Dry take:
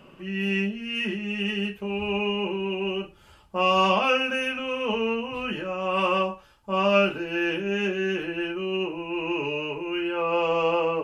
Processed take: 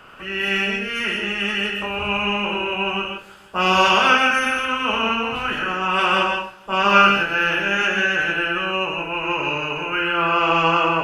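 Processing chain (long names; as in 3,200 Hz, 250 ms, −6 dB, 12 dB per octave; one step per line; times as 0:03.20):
ceiling on every frequency bin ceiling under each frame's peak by 16 dB
parametric band 1,400 Hz +11.5 dB 0.5 octaves
on a send: delay with a low-pass on its return 157 ms, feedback 60%, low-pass 2,600 Hz, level −24 dB
on the sum: reverb whose tail is shaped and stops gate 190 ms rising, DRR 3 dB
level +2 dB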